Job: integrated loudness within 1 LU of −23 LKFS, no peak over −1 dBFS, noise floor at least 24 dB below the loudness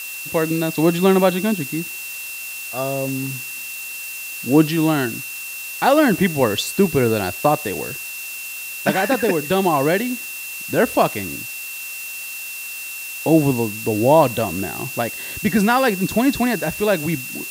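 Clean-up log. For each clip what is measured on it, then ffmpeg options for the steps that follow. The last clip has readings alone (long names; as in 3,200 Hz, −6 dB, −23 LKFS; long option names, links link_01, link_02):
interfering tone 2,700 Hz; level of the tone −31 dBFS; background noise floor −31 dBFS; target noise floor −44 dBFS; integrated loudness −20.0 LKFS; sample peak −2.0 dBFS; target loudness −23.0 LKFS
→ -af "bandreject=frequency=2700:width=30"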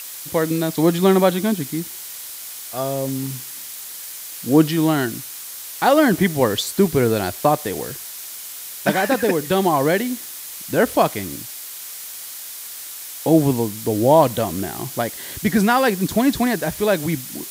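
interfering tone none found; background noise floor −34 dBFS; target noise floor −44 dBFS
→ -af "afftdn=noise_reduction=10:noise_floor=-34"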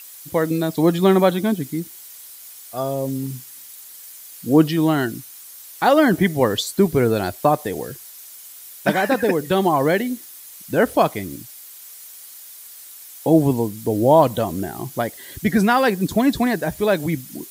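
background noise floor −41 dBFS; target noise floor −44 dBFS
→ -af "afftdn=noise_reduction=6:noise_floor=-41"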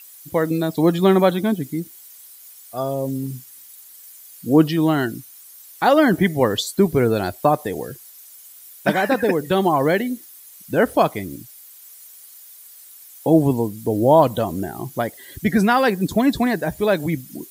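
background noise floor −44 dBFS; integrated loudness −19.5 LKFS; sample peak −2.5 dBFS; target loudness −23.0 LKFS
→ -af "volume=-3.5dB"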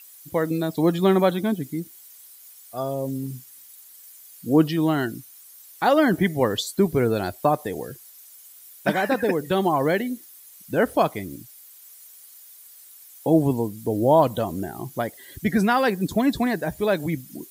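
integrated loudness −23.0 LKFS; sample peak −6.0 dBFS; background noise floor −48 dBFS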